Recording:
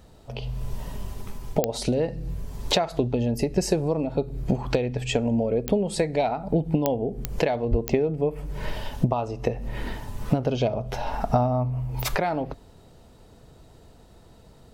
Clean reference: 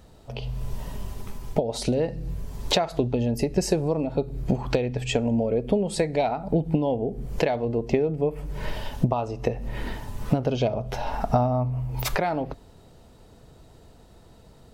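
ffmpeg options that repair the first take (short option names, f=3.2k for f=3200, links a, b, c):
-filter_complex "[0:a]adeclick=t=4,asplit=3[a][b][c];[a]afade=t=out:st=7.7:d=0.02[d];[b]highpass=f=140:w=0.5412,highpass=f=140:w=1.3066,afade=t=in:st=7.7:d=0.02,afade=t=out:st=7.82:d=0.02[e];[c]afade=t=in:st=7.82:d=0.02[f];[d][e][f]amix=inputs=3:normalize=0"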